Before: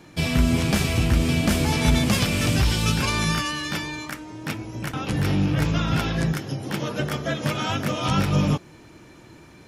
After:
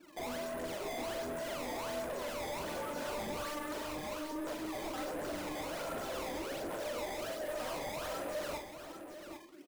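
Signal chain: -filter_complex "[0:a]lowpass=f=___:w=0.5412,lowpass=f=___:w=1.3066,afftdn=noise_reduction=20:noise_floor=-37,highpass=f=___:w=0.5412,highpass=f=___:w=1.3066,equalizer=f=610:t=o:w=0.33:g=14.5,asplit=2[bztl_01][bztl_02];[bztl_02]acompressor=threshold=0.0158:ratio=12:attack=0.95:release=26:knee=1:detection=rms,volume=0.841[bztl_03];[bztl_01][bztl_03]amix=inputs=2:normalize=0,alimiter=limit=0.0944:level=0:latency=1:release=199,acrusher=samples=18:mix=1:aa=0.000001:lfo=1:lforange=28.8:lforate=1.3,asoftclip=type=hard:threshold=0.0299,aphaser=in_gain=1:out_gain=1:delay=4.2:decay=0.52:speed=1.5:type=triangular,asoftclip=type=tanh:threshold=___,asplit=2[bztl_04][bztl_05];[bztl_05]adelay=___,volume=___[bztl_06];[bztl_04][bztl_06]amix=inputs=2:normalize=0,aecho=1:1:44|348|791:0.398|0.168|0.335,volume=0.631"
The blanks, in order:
1400, 1400, 300, 300, 0.02, 42, 0.251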